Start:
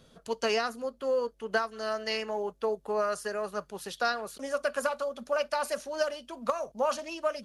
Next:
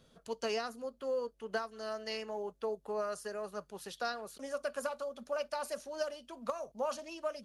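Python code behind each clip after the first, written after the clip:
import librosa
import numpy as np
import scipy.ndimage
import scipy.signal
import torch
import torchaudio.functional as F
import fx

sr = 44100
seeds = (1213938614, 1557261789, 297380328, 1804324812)

y = fx.dynamic_eq(x, sr, hz=1800.0, q=0.72, threshold_db=-42.0, ratio=4.0, max_db=-4)
y = y * 10.0 ** (-6.0 / 20.0)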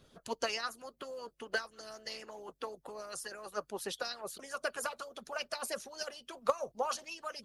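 y = fx.hpss(x, sr, part='harmonic', gain_db=-18)
y = y * 10.0 ** (7.5 / 20.0)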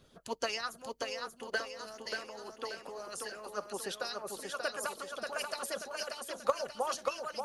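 y = fx.echo_feedback(x, sr, ms=584, feedback_pct=45, wet_db=-4.5)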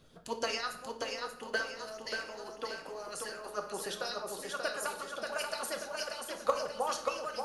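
y = fx.room_shoebox(x, sr, seeds[0], volume_m3=180.0, walls='mixed', distance_m=0.55)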